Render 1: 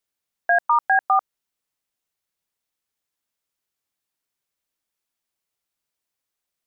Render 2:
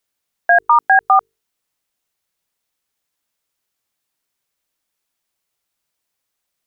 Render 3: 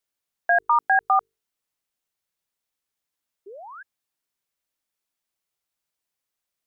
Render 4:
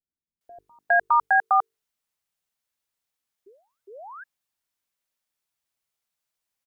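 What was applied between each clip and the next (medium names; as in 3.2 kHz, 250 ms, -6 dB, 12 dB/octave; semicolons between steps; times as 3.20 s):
hum notches 50/100/150/200/250/300/350/400/450 Hz; trim +6.5 dB
painted sound rise, 3.46–3.83 s, 370–1700 Hz -33 dBFS; trim -7.5 dB
bands offset in time lows, highs 410 ms, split 350 Hz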